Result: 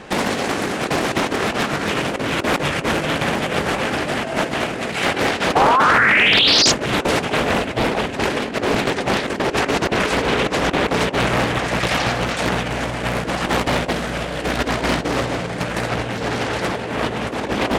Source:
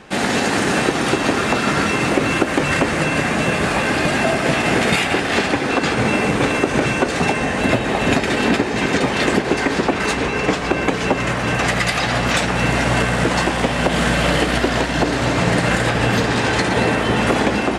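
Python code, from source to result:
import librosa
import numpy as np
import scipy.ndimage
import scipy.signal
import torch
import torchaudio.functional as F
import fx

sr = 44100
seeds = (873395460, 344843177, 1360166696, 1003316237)

y = fx.peak_eq(x, sr, hz=540.0, db=3.0, octaves=0.93)
y = fx.over_compress(y, sr, threshold_db=-20.0, ratio=-0.5)
y = fx.spec_paint(y, sr, seeds[0], shape='rise', start_s=5.55, length_s=1.17, low_hz=710.0, high_hz=5500.0, level_db=-14.0)
y = fx.doppler_dist(y, sr, depth_ms=0.87)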